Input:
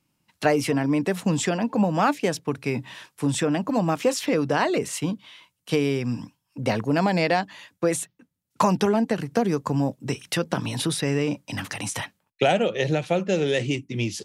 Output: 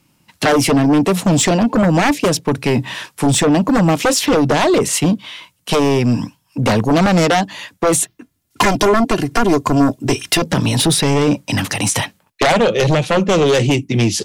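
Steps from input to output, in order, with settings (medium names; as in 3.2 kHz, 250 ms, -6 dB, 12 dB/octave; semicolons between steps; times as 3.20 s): dynamic bell 1.5 kHz, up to -6 dB, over -39 dBFS, Q 1; sine folder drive 13 dB, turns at -6.5 dBFS; 8.00–10.42 s: comb 2.9 ms, depth 56%; trim -2.5 dB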